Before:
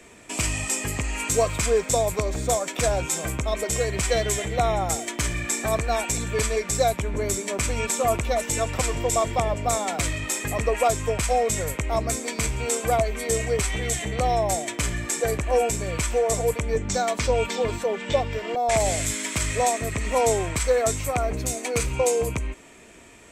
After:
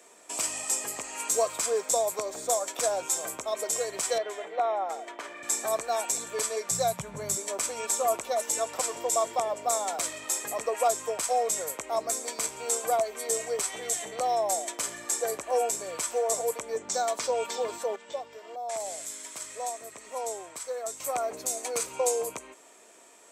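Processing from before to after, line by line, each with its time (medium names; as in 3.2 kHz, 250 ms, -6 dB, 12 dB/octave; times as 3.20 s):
4.18–5.43 s: three-band isolator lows -22 dB, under 260 Hz, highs -22 dB, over 3.1 kHz
6.71–7.37 s: resonant low shelf 220 Hz +12.5 dB, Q 3
17.96–21.00 s: gain -8.5 dB
whole clip: high-pass 590 Hz 12 dB/octave; peaking EQ 2.3 kHz -11 dB 1.4 oct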